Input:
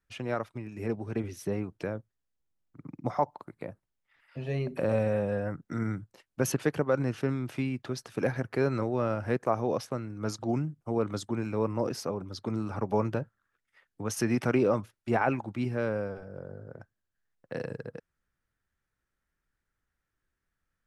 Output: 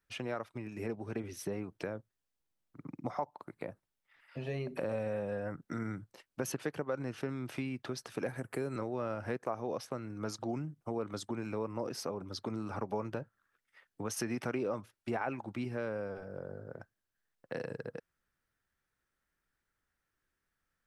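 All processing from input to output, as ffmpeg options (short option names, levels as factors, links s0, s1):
-filter_complex "[0:a]asettb=1/sr,asplit=3[s0][s1][s2];[s0]atrim=end=8.284[s3];[s1]atrim=start=8.28:end=8.76,asetpts=PTS-STARTPTS,afade=t=in:d=0.004:c=qsin,afade=t=out:st=0.476:d=0.004:c=qsin,highshelf=f=6700:t=q:w=3:g=7,acrossover=split=480|3000[s4][s5][s6];[s5]acompressor=threshold=0.00891:ratio=2:attack=3.2:release=140:knee=2.83:detection=peak[s7];[s4][s7][s6]amix=inputs=3:normalize=0[s8];[s2]atrim=start=8.756[s9];[s3][s8]acrossfade=d=0.004:c1=hsin:c2=qsin[s10];[s10][s9]acrossfade=d=0.004:c1=qsin:c2=hsin,lowshelf=f=170:g=-7,bandreject=f=6900:w=25,acompressor=threshold=0.0141:ratio=2.5,volume=1.12"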